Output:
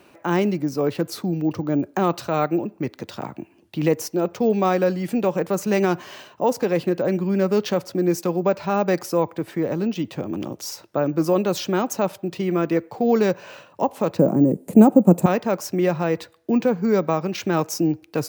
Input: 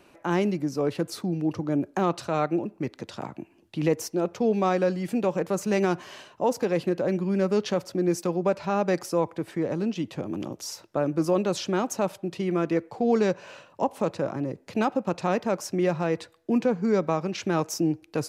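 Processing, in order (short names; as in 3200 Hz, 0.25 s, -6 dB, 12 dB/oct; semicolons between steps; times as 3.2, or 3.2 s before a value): 14.19–15.26 EQ curve 110 Hz 0 dB, 180 Hz +14 dB, 680 Hz +4 dB, 1400 Hz -8 dB, 5200 Hz -13 dB, 7900 Hz +14 dB; careless resampling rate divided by 2×, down none, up hold; HPF 59 Hz; gain +4 dB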